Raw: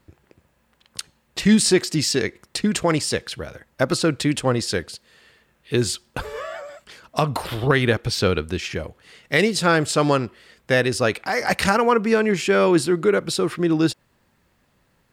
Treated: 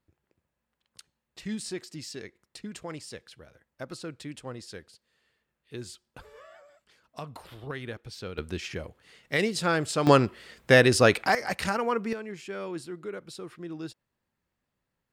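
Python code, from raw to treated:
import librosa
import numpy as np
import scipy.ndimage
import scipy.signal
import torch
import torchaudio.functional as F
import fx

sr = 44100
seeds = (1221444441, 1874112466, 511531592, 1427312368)

y = fx.gain(x, sr, db=fx.steps((0.0, -19.0), (8.38, -8.0), (10.07, 1.0), (11.35, -10.0), (12.13, -19.0)))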